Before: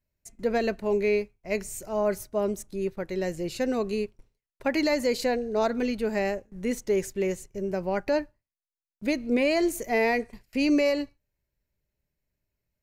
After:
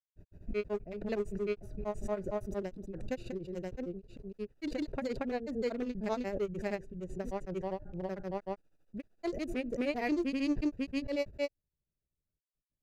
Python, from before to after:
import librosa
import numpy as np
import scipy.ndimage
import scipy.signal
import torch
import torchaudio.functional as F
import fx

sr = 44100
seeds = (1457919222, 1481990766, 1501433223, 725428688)

y = fx.wiener(x, sr, points=41)
y = fx.granulator(y, sr, seeds[0], grain_ms=100.0, per_s=13.0, spray_ms=595.0, spread_st=0)
y = fx.pre_swell(y, sr, db_per_s=54.0)
y = F.gain(torch.from_numpy(y), -6.0).numpy()